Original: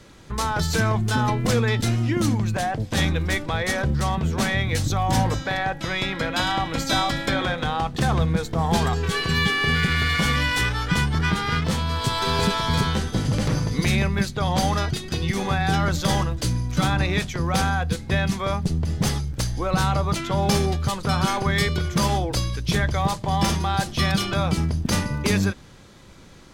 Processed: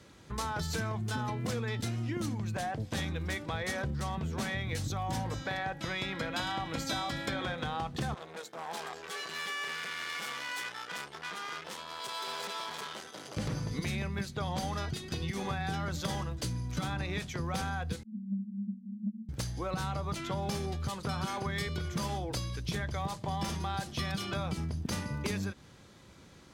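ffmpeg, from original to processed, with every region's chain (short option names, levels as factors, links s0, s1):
-filter_complex "[0:a]asettb=1/sr,asplit=3[s0][s1][s2];[s0]atrim=end=8.144[s3];[s1]atrim=start=8.14:end=13.37,asetpts=PTS-STARTPTS,afade=t=in:d=0.004:c=qsin,afade=t=out:st=5.226:d=0.004:c=qsin,bandreject=f=4400:w=26,aeval=exprs='(tanh(17.8*val(0)+0.75)-tanh(0.75))/17.8':c=same,highpass=460[s4];[s2]atrim=start=13.366[s5];[s3][s4]acrossfade=d=0.004:c1=hsin:c2=qsin[s6];[s6][s5]acrossfade=d=0.004:c1=qsin:c2=hsin,asettb=1/sr,asplit=3[s7][s8][s9];[s7]atrim=end=18.034[s10];[s8]atrim=start=18.03:end=19.29,asetpts=PTS-STARTPTS,afade=t=in:d=0.004:c=qsin,afade=t=out:st=1.256:d=0.004:c=qsin,asuperpass=centerf=210:order=12:qfactor=5.5,acontrast=80[s11];[s9]atrim=start=19.286[s12];[s10][s11]acrossfade=d=0.004:c1=hsin:c2=qsin[s13];[s13][s12]acrossfade=d=0.004:c1=qsin:c2=hsin,acompressor=threshold=0.0708:ratio=6,highpass=54,volume=0.422"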